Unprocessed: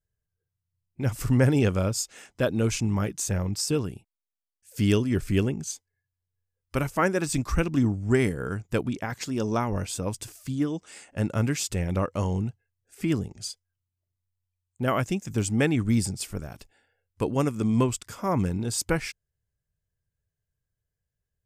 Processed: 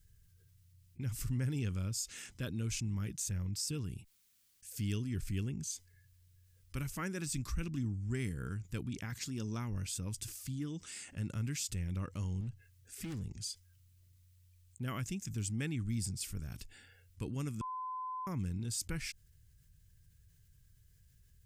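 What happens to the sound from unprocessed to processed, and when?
12.40–13.29 s: hard clipper -28 dBFS
17.61–18.27 s: bleep 1.02 kHz -21 dBFS
whole clip: amplifier tone stack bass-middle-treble 6-0-2; level flattener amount 50%; trim +1 dB

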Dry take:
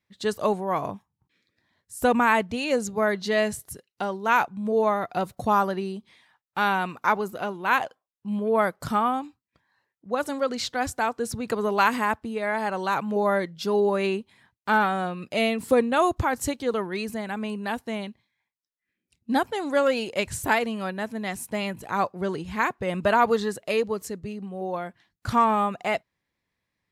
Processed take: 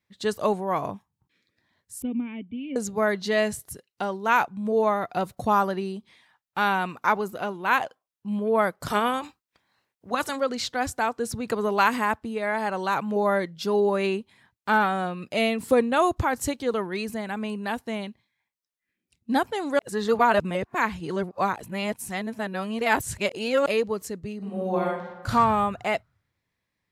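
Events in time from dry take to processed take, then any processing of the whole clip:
2.02–2.76 s: cascade formant filter i
8.86–10.35 s: spectral peaks clipped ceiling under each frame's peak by 16 dB
19.79–23.66 s: reverse
24.37–25.29 s: reverb throw, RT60 1.1 s, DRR -4 dB

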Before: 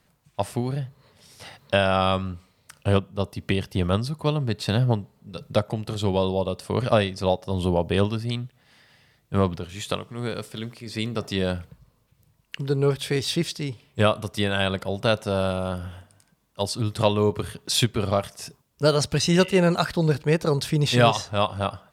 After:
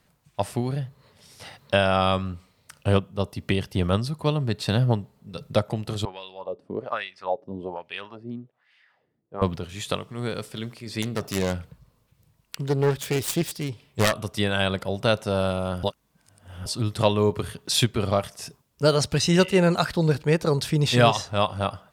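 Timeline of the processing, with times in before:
6.05–9.42 s: LFO band-pass sine 1.2 Hz 260–2500 Hz
11.02–14.13 s: self-modulated delay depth 0.53 ms
15.83–16.66 s: reverse

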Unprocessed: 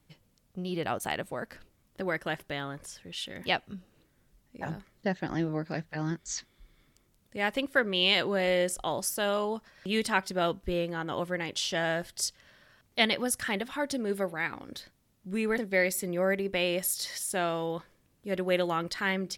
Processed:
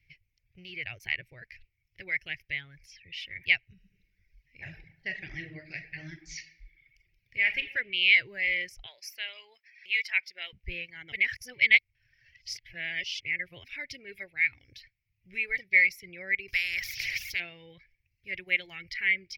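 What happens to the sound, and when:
3.72–7.63 s: reverb throw, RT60 1.1 s, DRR 2 dB
8.86–10.53 s: high-pass 780 Hz
11.12–13.64 s: reverse
16.48–17.40 s: spectrum-flattening compressor 4:1
whole clip: reverb removal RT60 0.81 s; FFT filter 120 Hz 0 dB, 220 Hz -24 dB, 370 Hz -16 dB, 680 Hz -21 dB, 1.2 kHz -28 dB, 2.2 kHz +14 dB, 3.6 kHz -8 dB, 5.4 kHz -2 dB, 8 kHz -27 dB, 15 kHz -11 dB

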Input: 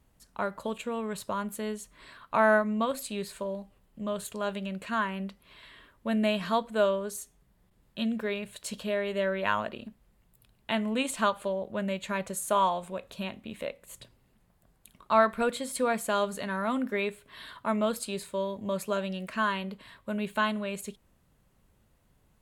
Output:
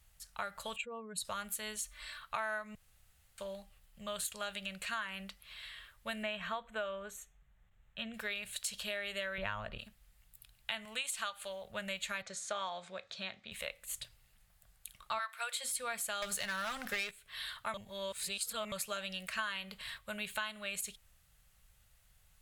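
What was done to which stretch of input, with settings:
0.76–1.25 s: spectral contrast enhancement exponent 2
1.76–2.20 s: comb 3.4 ms
2.75–3.38 s: room tone
6.23–8.14 s: boxcar filter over 9 samples
9.38–9.79 s: tilt EQ -3.5 dB/octave
10.85–11.65 s: bass shelf 490 Hz -8 dB
12.22–13.52 s: cabinet simulation 160–5800 Hz, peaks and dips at 350 Hz +4 dB, 1 kHz -5 dB, 2.8 kHz -9 dB
15.18–15.63 s: high-pass 1 kHz -> 470 Hz 24 dB/octave
16.22–17.11 s: waveshaping leveller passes 3
17.74–18.72 s: reverse
19.39–19.98 s: gain +4 dB
whole clip: amplifier tone stack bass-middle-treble 10-0-10; band-stop 1 kHz, Q 7.7; compression 6:1, threshold -42 dBFS; trim +7 dB

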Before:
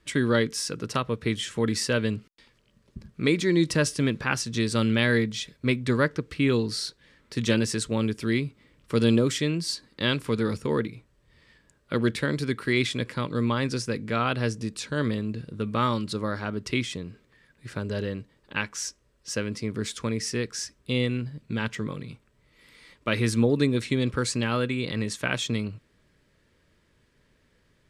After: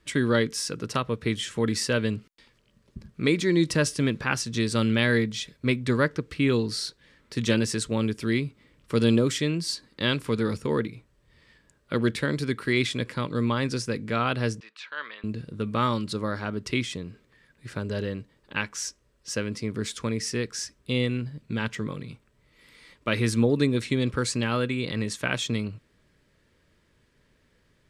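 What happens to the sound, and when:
14.60–15.24 s: Butterworth band-pass 1.8 kHz, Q 0.79

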